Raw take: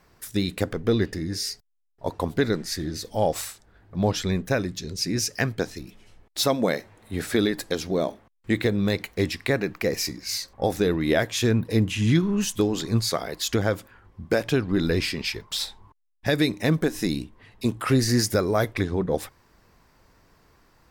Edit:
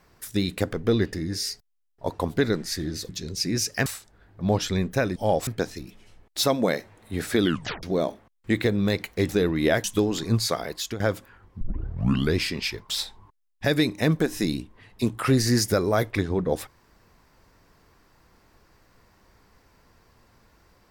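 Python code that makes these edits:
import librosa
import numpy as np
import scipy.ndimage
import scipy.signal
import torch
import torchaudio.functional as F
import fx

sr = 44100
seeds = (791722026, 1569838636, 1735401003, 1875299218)

y = fx.edit(x, sr, fx.swap(start_s=3.09, length_s=0.31, other_s=4.7, other_length_s=0.77),
    fx.tape_stop(start_s=7.42, length_s=0.41),
    fx.cut(start_s=9.29, length_s=1.45),
    fx.cut(start_s=11.29, length_s=1.17),
    fx.fade_out_to(start_s=13.31, length_s=0.31, floor_db=-14.0),
    fx.tape_start(start_s=14.23, length_s=0.73), tone=tone)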